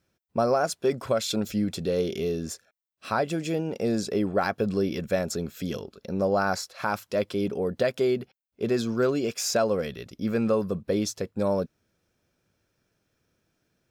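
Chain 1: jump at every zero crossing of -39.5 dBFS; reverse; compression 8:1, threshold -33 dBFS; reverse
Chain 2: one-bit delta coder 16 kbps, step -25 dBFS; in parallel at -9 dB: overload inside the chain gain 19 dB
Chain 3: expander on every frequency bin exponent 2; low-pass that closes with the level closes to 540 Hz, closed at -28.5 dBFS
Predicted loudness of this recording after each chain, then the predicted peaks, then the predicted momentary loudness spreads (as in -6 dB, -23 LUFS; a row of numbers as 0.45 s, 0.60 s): -37.5 LUFS, -25.0 LUFS, -34.0 LUFS; -21.5 dBFS, -12.0 dBFS, -18.0 dBFS; 9 LU, 7 LU, 10 LU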